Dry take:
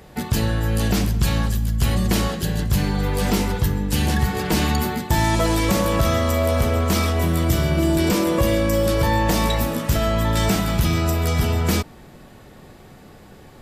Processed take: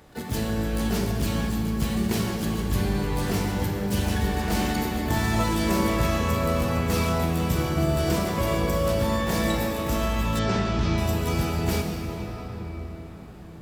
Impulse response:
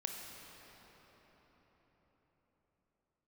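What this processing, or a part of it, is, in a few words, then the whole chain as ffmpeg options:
shimmer-style reverb: -filter_complex "[0:a]asplit=2[a][b];[b]asetrate=88200,aresample=44100,atempo=0.5,volume=-6dB[c];[a][c]amix=inputs=2:normalize=0[d];[1:a]atrim=start_sample=2205[e];[d][e]afir=irnorm=-1:irlink=0,asettb=1/sr,asplit=3[f][g][h];[f]atrim=end=10.394[i];[g]atrim=start=10.39:end=10.98,asetpts=PTS-STARTPTS,afade=t=in:d=0.004:c=qsin,afade=t=out:st=0.586:d=0.004:c=qsin,lowpass=f=5.8k:w=0.5412,lowpass=f=5.8k:w=1.3066[j];[h]atrim=start=10.976[k];[i][j]acrossfade=d=0.004:c1=hsin:c2=qsin[l];[l][k]acrossfade=d=0.004:c1=qsin:c2=hsin,volume=-6dB"

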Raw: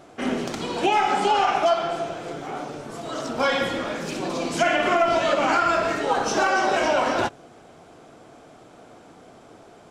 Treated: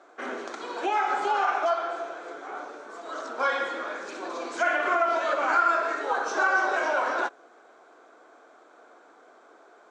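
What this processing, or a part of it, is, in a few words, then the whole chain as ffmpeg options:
phone speaker on a table: -af "highpass=f=330:w=0.5412,highpass=f=330:w=1.3066,equalizer=f=1.1k:t=q:w=4:g=5,equalizer=f=1.5k:t=q:w=4:g=8,equalizer=f=2.9k:t=q:w=4:g=-7,equalizer=f=5.1k:t=q:w=4:g=-6,lowpass=f=7.2k:w=0.5412,lowpass=f=7.2k:w=1.3066,volume=-6.5dB"

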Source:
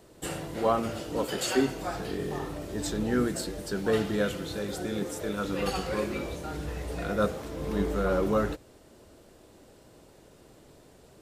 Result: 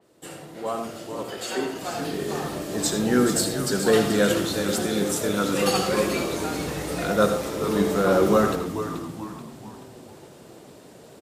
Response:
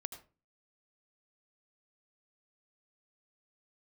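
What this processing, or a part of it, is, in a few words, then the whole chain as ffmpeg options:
far laptop microphone: -filter_complex "[0:a]asettb=1/sr,asplit=3[a][b][c];[a]atrim=end=1.234[d];[b]atrim=start=1.23:end=1.76,asetpts=PTS-STARTPTS,afade=t=in:d=0.004:c=qsin,afade=t=out:st=0.526:d=0.004:c=qsin,bass=f=250:g=-13,treble=f=4k:g=-7[e];[c]atrim=start=1.756[f];[d][e]acrossfade=d=0.004:c1=hsin:c2=qsin[g];[g][f]acrossfade=d=0.004:c1=qsin:c2=hsin,asplit=7[h][i][j][k][l][m][n];[i]adelay=432,afreqshift=-110,volume=-9.5dB[o];[j]adelay=864,afreqshift=-220,volume=-15.5dB[p];[k]adelay=1296,afreqshift=-330,volume=-21.5dB[q];[l]adelay=1728,afreqshift=-440,volume=-27.6dB[r];[m]adelay=2160,afreqshift=-550,volume=-33.6dB[s];[n]adelay=2592,afreqshift=-660,volume=-39.6dB[t];[h][o][p][q][r][s][t]amix=inputs=7:normalize=0[u];[1:a]atrim=start_sample=2205[v];[u][v]afir=irnorm=-1:irlink=0,highpass=140,dynaudnorm=f=610:g=7:m=12dB,adynamicequalizer=threshold=0.00794:dfrequency=3900:dqfactor=0.7:tfrequency=3900:tqfactor=0.7:attack=5:release=100:ratio=0.375:range=3:mode=boostabove:tftype=highshelf,volume=-2dB"

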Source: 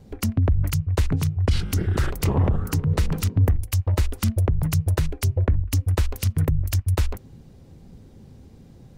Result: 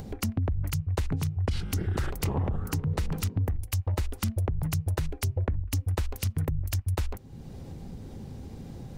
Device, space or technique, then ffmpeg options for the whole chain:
upward and downward compression: -af "acompressor=mode=upward:threshold=-26dB:ratio=2.5,acompressor=threshold=-20dB:ratio=6,equalizer=f=810:t=o:w=0.28:g=3.5,volume=-4dB"

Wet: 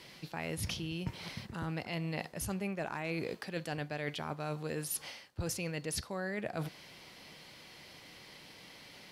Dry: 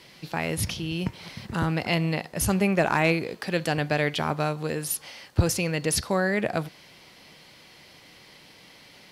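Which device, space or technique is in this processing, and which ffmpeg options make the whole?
compression on the reversed sound: -af "areverse,acompressor=threshold=-31dB:ratio=12,areverse,volume=-2.5dB"

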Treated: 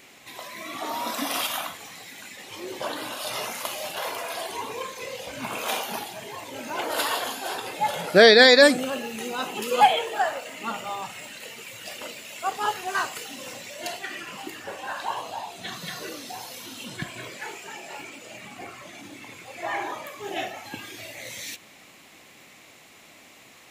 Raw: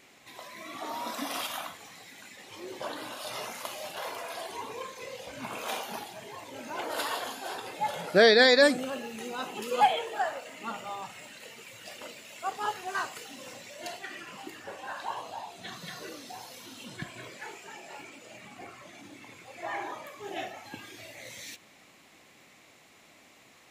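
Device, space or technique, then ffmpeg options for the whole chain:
presence and air boost: -af "equalizer=f=2.8k:t=o:w=0.77:g=2,highshelf=f=9.6k:g=6,volume=5.5dB"

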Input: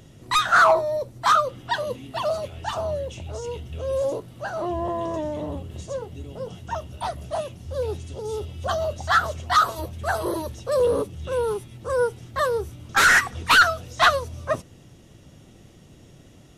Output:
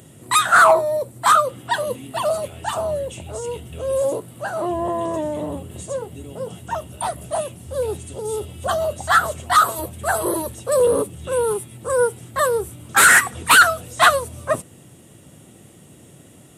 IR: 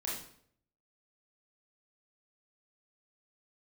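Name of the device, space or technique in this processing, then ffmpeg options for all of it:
budget condenser microphone: -af "highpass=110,highshelf=f=7k:t=q:w=3:g=7,volume=4dB"

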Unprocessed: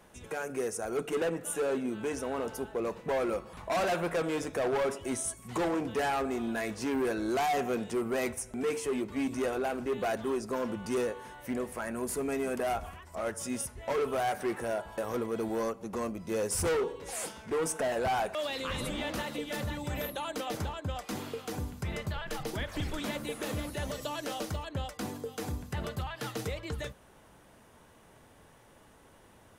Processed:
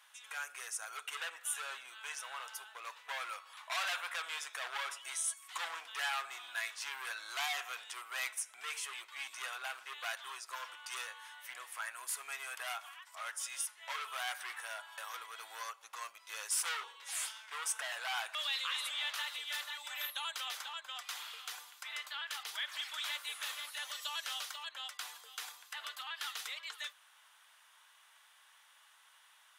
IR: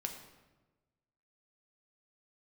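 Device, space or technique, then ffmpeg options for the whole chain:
headphones lying on a table: -af "highpass=f=1.1k:w=0.5412,highpass=f=1.1k:w=1.3066,equalizer=f=3.4k:t=o:w=0.59:g=6.5,volume=-1dB"

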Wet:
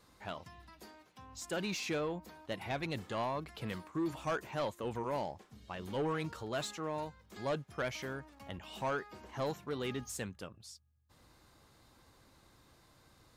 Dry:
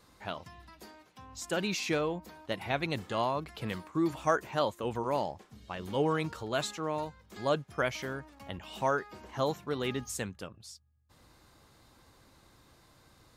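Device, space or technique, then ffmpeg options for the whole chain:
saturation between pre-emphasis and de-emphasis: -af "highshelf=f=4.9k:g=8.5,asoftclip=type=tanh:threshold=-25.5dB,highshelf=f=4.9k:g=-8.5,volume=-3dB"

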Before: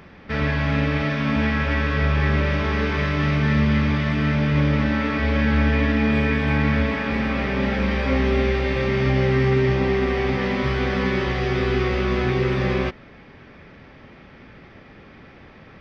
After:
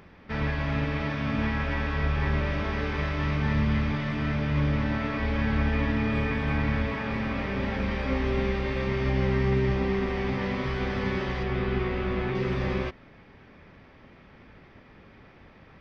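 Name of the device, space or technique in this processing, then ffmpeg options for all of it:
octave pedal: -filter_complex "[0:a]asplit=2[a][b];[b]asetrate=22050,aresample=44100,atempo=2,volume=-6dB[c];[a][c]amix=inputs=2:normalize=0,asettb=1/sr,asplit=3[d][e][f];[d]atrim=end=11.434[g];[e]atrim=start=11.43:end=12.35,asetpts=PTS-STARTPTS,afade=t=in:d=0.004:c=qsin,afade=t=out:st=0.916:d=0.004:c=qsin,acrossover=split=4000[h][i];[i]acompressor=threshold=-58dB:ratio=4:attack=1:release=60[j];[h][j]amix=inputs=2:normalize=0[k];[f]atrim=start=12.346[l];[g][k]acrossfade=d=0.004:c1=hsin:c2=qsin[m];[m][l]acrossfade=d=0.004:c1=qsin:c2=hsin,volume=-7.5dB"

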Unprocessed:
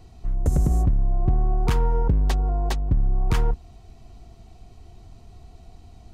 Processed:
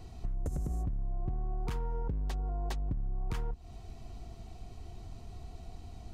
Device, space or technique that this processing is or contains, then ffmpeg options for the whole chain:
serial compression, leveller first: -af "acompressor=threshold=-22dB:ratio=2.5,acompressor=threshold=-33dB:ratio=4"

